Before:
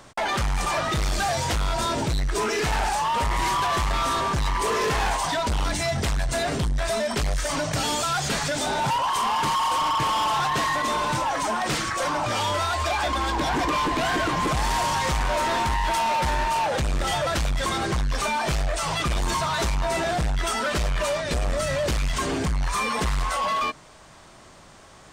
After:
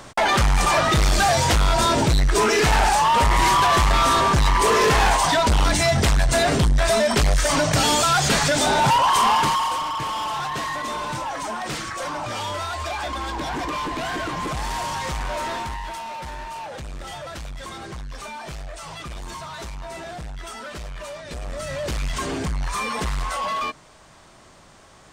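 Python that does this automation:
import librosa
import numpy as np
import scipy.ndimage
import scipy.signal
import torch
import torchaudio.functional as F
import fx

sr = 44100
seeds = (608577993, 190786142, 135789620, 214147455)

y = fx.gain(x, sr, db=fx.line((9.31, 6.5), (9.87, -3.5), (15.47, -3.5), (16.02, -10.0), (21.17, -10.0), (22.04, -1.0)))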